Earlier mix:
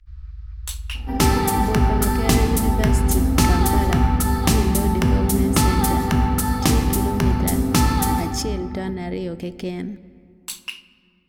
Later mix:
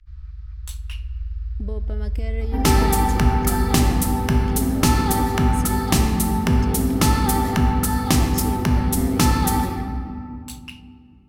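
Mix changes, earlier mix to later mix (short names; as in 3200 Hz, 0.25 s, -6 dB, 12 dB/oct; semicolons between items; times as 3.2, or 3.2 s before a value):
speech -7.5 dB; second sound: entry +1.45 s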